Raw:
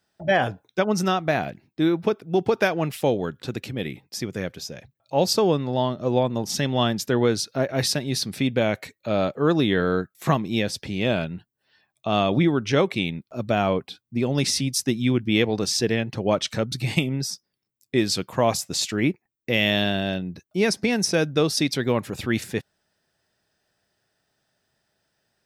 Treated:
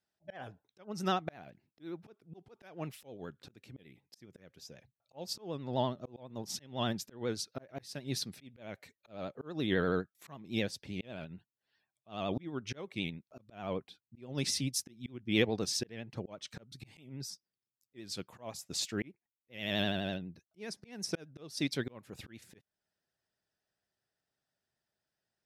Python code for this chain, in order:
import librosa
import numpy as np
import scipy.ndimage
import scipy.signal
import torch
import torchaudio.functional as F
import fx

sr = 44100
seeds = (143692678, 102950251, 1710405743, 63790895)

y = fx.auto_swell(x, sr, attack_ms=325.0)
y = fx.vibrato(y, sr, rate_hz=12.0, depth_cents=68.0)
y = fx.upward_expand(y, sr, threshold_db=-36.0, expansion=1.5)
y = y * 10.0 ** (-6.5 / 20.0)